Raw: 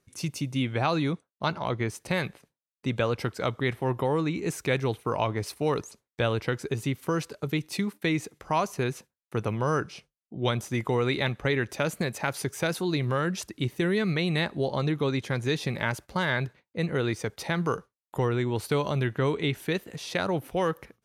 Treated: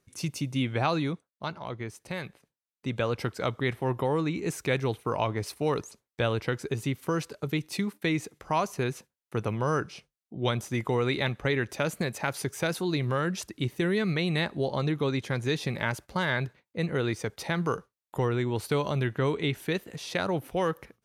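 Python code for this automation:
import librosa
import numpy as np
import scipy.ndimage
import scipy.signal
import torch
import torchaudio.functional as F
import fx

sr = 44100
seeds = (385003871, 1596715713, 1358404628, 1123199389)

y = fx.gain(x, sr, db=fx.line((0.87, -0.5), (1.55, -7.5), (2.25, -7.5), (3.2, -1.0)))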